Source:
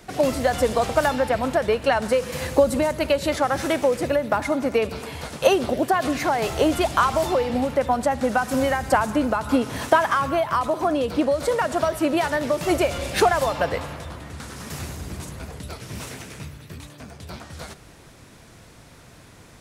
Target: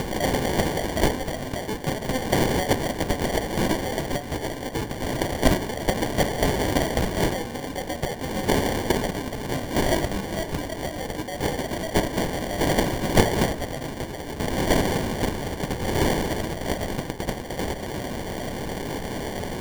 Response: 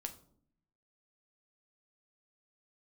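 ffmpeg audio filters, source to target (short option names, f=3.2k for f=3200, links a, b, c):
-af "acompressor=mode=upward:threshold=-23dB:ratio=2.5,aexciter=amount=2.5:drive=4.8:freq=2.9k,tiltshelf=f=970:g=-4,aexciter=amount=8.8:drive=7.8:freq=11k,equalizer=f=2.6k:t=o:w=0.61:g=9.5,acrusher=samples=34:mix=1:aa=0.000001,bandreject=f=55.94:t=h:w=4,bandreject=f=111.88:t=h:w=4,bandreject=f=167.82:t=h:w=4,bandreject=f=223.76:t=h:w=4,bandreject=f=279.7:t=h:w=4,bandreject=f=335.64:t=h:w=4,bandreject=f=391.58:t=h:w=4,bandreject=f=447.52:t=h:w=4,bandreject=f=503.46:t=h:w=4,bandreject=f=559.4:t=h:w=4,bandreject=f=615.34:t=h:w=4,bandreject=f=671.28:t=h:w=4,bandreject=f=727.22:t=h:w=4,bandreject=f=783.16:t=h:w=4,bandreject=f=839.1:t=h:w=4,bandreject=f=895.04:t=h:w=4,bandreject=f=950.98:t=h:w=4,bandreject=f=1.00692k:t=h:w=4,bandreject=f=1.06286k:t=h:w=4,bandreject=f=1.1188k:t=h:w=4,bandreject=f=1.17474k:t=h:w=4,bandreject=f=1.23068k:t=h:w=4,bandreject=f=1.28662k:t=h:w=4,bandreject=f=1.34256k:t=h:w=4,bandreject=f=1.3985k:t=h:w=4,bandreject=f=1.45444k:t=h:w=4,bandreject=f=1.51038k:t=h:w=4,bandreject=f=1.56632k:t=h:w=4,bandreject=f=1.62226k:t=h:w=4,bandreject=f=1.6782k:t=h:w=4,bandreject=f=1.73414k:t=h:w=4,bandreject=f=1.79008k:t=h:w=4,bandreject=f=1.84602k:t=h:w=4,bandreject=f=1.90196k:t=h:w=4,bandreject=f=1.9579k:t=h:w=4,bandreject=f=2.01384k:t=h:w=4,volume=-10dB"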